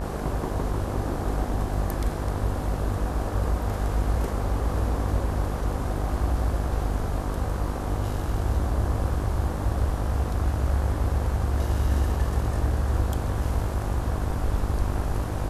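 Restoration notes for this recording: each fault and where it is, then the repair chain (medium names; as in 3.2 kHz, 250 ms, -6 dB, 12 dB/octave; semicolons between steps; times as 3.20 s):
buzz 50 Hz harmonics 35 -30 dBFS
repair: de-hum 50 Hz, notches 35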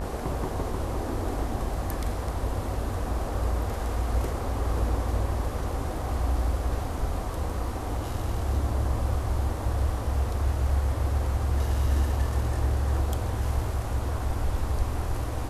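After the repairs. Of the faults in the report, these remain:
nothing left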